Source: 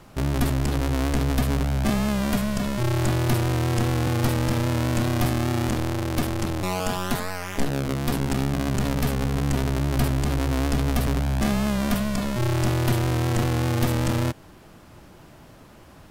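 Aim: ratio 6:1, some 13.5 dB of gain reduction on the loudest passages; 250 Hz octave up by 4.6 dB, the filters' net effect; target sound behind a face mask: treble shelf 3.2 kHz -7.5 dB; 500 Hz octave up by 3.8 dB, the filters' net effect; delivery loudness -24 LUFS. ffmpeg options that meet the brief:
-af "equalizer=f=250:t=o:g=5,equalizer=f=500:t=o:g=3.5,acompressor=threshold=0.0316:ratio=6,highshelf=f=3200:g=-7.5,volume=2.99"

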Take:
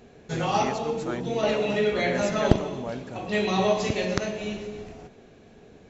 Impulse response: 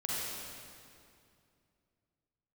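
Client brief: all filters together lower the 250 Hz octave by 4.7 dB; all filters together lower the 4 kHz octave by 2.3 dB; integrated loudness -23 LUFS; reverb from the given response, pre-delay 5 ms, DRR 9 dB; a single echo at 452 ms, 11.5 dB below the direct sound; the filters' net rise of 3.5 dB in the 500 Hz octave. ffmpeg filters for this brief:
-filter_complex "[0:a]equalizer=f=250:t=o:g=-9,equalizer=f=500:t=o:g=7,equalizer=f=4000:t=o:g=-3,aecho=1:1:452:0.266,asplit=2[s0][s1];[1:a]atrim=start_sample=2205,adelay=5[s2];[s1][s2]afir=irnorm=-1:irlink=0,volume=0.2[s3];[s0][s3]amix=inputs=2:normalize=0,volume=1.06"

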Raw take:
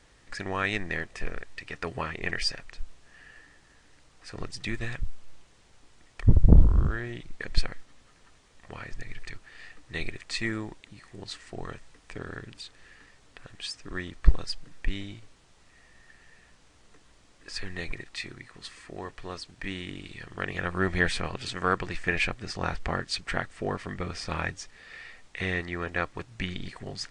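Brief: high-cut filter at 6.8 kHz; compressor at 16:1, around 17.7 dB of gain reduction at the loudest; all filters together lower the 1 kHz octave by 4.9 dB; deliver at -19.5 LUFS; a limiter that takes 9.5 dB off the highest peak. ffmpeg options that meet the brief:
-af "lowpass=6800,equalizer=f=1000:t=o:g=-7,acompressor=threshold=0.0447:ratio=16,volume=10.6,alimiter=limit=0.562:level=0:latency=1"

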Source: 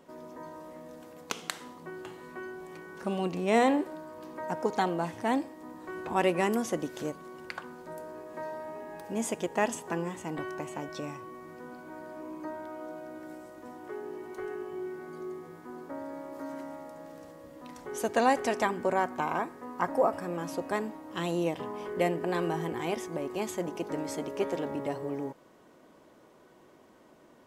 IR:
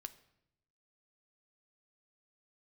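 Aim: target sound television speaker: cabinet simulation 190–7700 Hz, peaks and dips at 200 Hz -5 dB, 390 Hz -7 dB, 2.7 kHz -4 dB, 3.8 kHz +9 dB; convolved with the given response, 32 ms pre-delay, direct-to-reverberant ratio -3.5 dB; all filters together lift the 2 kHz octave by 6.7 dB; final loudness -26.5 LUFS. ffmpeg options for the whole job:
-filter_complex "[0:a]equalizer=f=2000:t=o:g=8.5,asplit=2[s0][s1];[1:a]atrim=start_sample=2205,adelay=32[s2];[s1][s2]afir=irnorm=-1:irlink=0,volume=2.51[s3];[s0][s3]amix=inputs=2:normalize=0,highpass=f=190:w=0.5412,highpass=f=190:w=1.3066,equalizer=f=200:t=q:w=4:g=-5,equalizer=f=390:t=q:w=4:g=-7,equalizer=f=2700:t=q:w=4:g=-4,equalizer=f=3800:t=q:w=4:g=9,lowpass=f=7700:w=0.5412,lowpass=f=7700:w=1.3066,volume=1.12"

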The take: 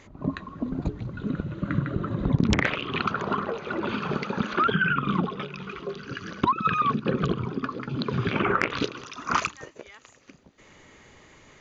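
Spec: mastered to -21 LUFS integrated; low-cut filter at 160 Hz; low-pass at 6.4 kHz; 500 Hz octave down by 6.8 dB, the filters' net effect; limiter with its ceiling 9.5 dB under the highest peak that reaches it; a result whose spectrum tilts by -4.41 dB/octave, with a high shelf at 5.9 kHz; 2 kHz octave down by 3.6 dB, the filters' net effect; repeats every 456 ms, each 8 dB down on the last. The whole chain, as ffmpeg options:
-af "highpass=160,lowpass=6400,equalizer=f=500:t=o:g=-9,equalizer=f=2000:t=o:g=-4,highshelf=f=5900:g=-3,alimiter=limit=0.1:level=0:latency=1,aecho=1:1:456|912|1368|1824|2280:0.398|0.159|0.0637|0.0255|0.0102,volume=3.55"

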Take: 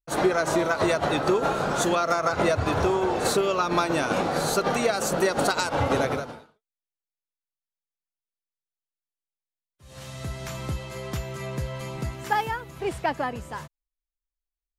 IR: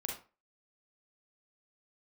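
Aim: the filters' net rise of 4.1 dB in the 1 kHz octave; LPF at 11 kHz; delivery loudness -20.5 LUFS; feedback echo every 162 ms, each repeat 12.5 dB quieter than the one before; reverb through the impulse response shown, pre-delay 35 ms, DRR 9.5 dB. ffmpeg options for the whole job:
-filter_complex "[0:a]lowpass=11000,equalizer=f=1000:t=o:g=5.5,aecho=1:1:162|324|486:0.237|0.0569|0.0137,asplit=2[s0][s1];[1:a]atrim=start_sample=2205,adelay=35[s2];[s1][s2]afir=irnorm=-1:irlink=0,volume=0.299[s3];[s0][s3]amix=inputs=2:normalize=0,volume=1.33"

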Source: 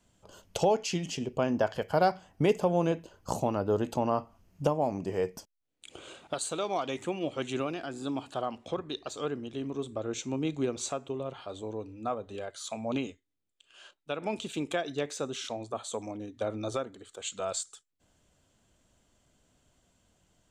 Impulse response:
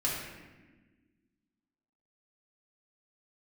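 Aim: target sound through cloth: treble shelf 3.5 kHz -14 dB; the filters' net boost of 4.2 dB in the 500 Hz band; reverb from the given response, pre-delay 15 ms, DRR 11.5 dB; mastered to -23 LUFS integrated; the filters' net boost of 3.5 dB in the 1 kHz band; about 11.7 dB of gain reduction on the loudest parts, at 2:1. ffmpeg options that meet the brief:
-filter_complex "[0:a]equalizer=f=500:t=o:g=4.5,equalizer=f=1000:t=o:g=4,acompressor=threshold=0.0126:ratio=2,asplit=2[s0][s1];[1:a]atrim=start_sample=2205,adelay=15[s2];[s1][s2]afir=irnorm=-1:irlink=0,volume=0.119[s3];[s0][s3]amix=inputs=2:normalize=0,highshelf=f=3500:g=-14,volume=5.62"

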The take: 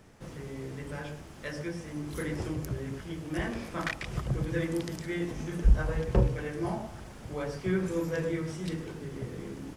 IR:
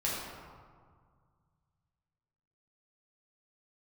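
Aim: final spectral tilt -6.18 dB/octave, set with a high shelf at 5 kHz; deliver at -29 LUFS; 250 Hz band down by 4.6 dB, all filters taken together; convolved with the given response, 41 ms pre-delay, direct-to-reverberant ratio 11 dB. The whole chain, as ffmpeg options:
-filter_complex "[0:a]equalizer=f=250:t=o:g=-8,highshelf=f=5000:g=-3.5,asplit=2[s0][s1];[1:a]atrim=start_sample=2205,adelay=41[s2];[s1][s2]afir=irnorm=-1:irlink=0,volume=0.133[s3];[s0][s3]amix=inputs=2:normalize=0,volume=2"

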